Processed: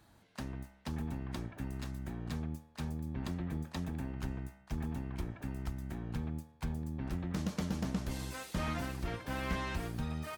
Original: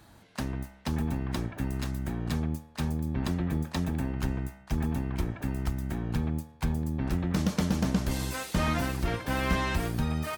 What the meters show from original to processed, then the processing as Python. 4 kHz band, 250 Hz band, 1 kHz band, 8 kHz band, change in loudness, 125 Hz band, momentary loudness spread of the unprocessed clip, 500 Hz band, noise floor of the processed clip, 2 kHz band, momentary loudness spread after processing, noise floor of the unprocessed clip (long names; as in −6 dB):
−8.5 dB, −8.5 dB, −8.5 dB, −9.5 dB, −8.5 dB, −8.5 dB, 6 LU, −8.5 dB, −63 dBFS, −8.5 dB, 6 LU, −55 dBFS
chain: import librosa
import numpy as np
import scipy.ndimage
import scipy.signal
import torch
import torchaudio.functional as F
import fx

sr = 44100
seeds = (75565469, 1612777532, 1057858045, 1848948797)

y = fx.doppler_dist(x, sr, depth_ms=0.13)
y = F.gain(torch.from_numpy(y), -8.5).numpy()